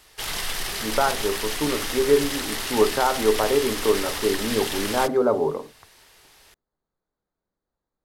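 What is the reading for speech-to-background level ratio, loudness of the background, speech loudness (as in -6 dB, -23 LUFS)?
4.5 dB, -28.0 LUFS, -23.5 LUFS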